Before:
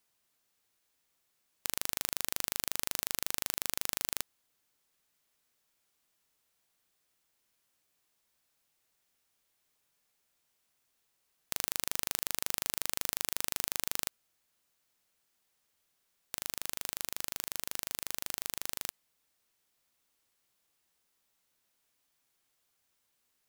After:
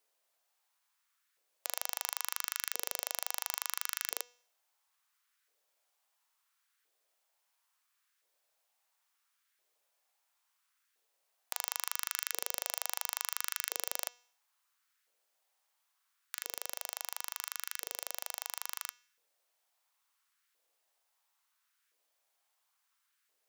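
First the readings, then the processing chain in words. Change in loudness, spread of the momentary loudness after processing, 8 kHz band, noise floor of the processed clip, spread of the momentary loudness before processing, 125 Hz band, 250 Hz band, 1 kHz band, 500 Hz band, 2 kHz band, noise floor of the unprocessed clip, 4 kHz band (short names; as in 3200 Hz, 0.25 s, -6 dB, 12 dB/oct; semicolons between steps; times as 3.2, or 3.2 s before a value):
-2.0 dB, 6 LU, -2.5 dB, -80 dBFS, 6 LU, under -25 dB, under -10 dB, +2.0 dB, -1.5 dB, 0.0 dB, -78 dBFS, -2.0 dB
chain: de-hum 243.4 Hz, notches 31; LFO high-pass saw up 0.73 Hz 450–1600 Hz; gain -2.5 dB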